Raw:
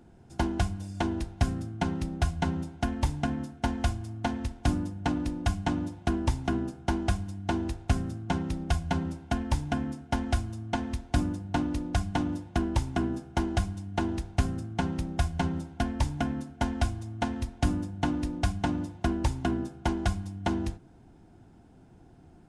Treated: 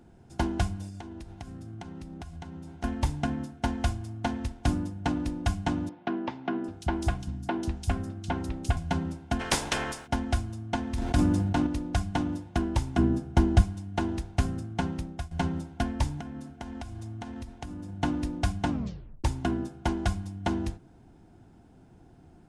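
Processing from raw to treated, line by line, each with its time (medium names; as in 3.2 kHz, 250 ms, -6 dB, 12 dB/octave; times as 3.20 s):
0.88–2.84 s: compression 16:1, threshold -37 dBFS
5.89–8.77 s: three bands offset in time mids, highs, lows 750/790 ms, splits 180/3700 Hz
9.39–10.06 s: spectral peaks clipped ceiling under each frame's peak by 29 dB
10.85–11.67 s: decay stretcher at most 22 dB/s
12.98–13.62 s: bass shelf 350 Hz +9 dB
14.69–15.31 s: fade out equal-power, to -16.5 dB
16.20–18.01 s: compression 16:1, threshold -34 dBFS
18.70 s: tape stop 0.54 s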